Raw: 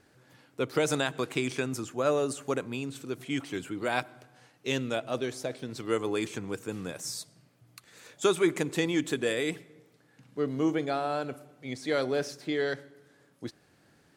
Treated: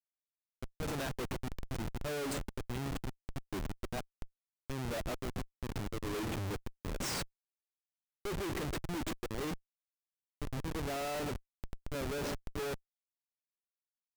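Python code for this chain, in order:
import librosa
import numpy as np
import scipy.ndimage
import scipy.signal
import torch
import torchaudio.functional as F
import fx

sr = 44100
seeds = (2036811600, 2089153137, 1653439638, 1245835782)

y = fx.auto_swell(x, sr, attack_ms=370.0)
y = fx.echo_banded(y, sr, ms=139, feedback_pct=42, hz=1300.0, wet_db=-17.5)
y = fx.schmitt(y, sr, flips_db=-37.5)
y = y * 10.0 ** (1.5 / 20.0)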